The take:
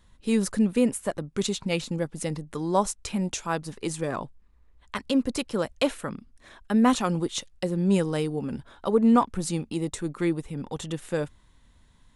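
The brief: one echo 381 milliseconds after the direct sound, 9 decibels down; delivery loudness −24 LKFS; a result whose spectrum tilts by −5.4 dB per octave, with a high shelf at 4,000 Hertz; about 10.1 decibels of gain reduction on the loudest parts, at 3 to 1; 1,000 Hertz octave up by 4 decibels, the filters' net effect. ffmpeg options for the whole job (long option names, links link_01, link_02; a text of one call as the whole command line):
ffmpeg -i in.wav -af "equalizer=frequency=1000:width_type=o:gain=5,highshelf=frequency=4000:gain=-3.5,acompressor=threshold=-27dB:ratio=3,aecho=1:1:381:0.355,volume=7.5dB" out.wav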